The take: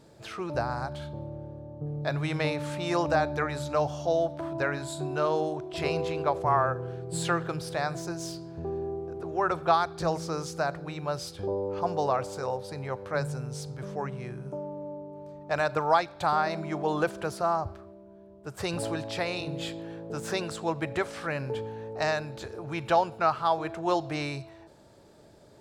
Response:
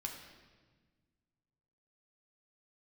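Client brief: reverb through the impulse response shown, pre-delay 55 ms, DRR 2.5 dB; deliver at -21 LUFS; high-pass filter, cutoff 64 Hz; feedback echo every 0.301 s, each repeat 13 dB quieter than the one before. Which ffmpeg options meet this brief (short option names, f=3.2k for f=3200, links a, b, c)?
-filter_complex "[0:a]highpass=64,aecho=1:1:301|602|903:0.224|0.0493|0.0108,asplit=2[a][b];[1:a]atrim=start_sample=2205,adelay=55[c];[b][c]afir=irnorm=-1:irlink=0,volume=-1.5dB[d];[a][d]amix=inputs=2:normalize=0,volume=7.5dB"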